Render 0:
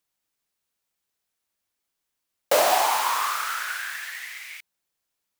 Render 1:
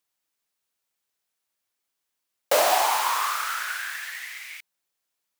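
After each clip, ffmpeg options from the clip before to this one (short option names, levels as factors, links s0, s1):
-af "lowshelf=f=220:g=-8"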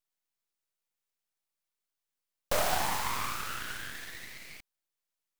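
-af "aeval=exprs='max(val(0),0)':c=same,volume=0.596"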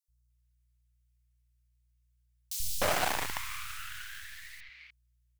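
-filter_complex "[0:a]aeval=exprs='val(0)+0.000398*(sin(2*PI*60*n/s)+sin(2*PI*2*60*n/s)/2+sin(2*PI*3*60*n/s)/3+sin(2*PI*4*60*n/s)/4+sin(2*PI*5*60*n/s)/5)':c=same,acrossover=split=230|3900[s0][s1][s2];[s0]adelay=80[s3];[s1]adelay=300[s4];[s3][s4][s2]amix=inputs=3:normalize=0,acrossover=split=120|1400|3900[s5][s6][s7][s8];[s6]acrusher=bits=4:mix=0:aa=0.000001[s9];[s5][s9][s7][s8]amix=inputs=4:normalize=0"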